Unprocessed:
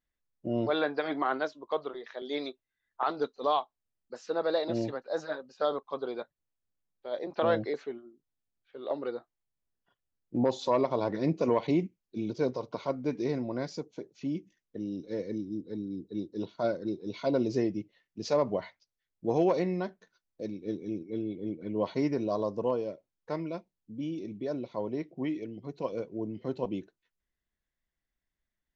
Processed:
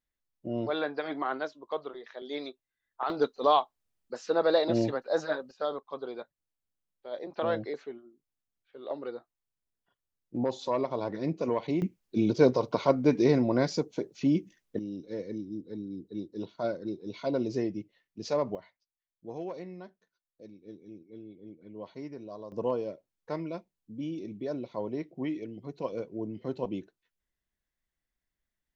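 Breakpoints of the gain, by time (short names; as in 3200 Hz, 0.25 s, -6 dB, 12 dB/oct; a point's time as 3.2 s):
-2.5 dB
from 3.1 s +4.5 dB
from 5.51 s -3 dB
from 11.82 s +8 dB
from 14.79 s -2 dB
from 18.55 s -12.5 dB
from 22.52 s -0.5 dB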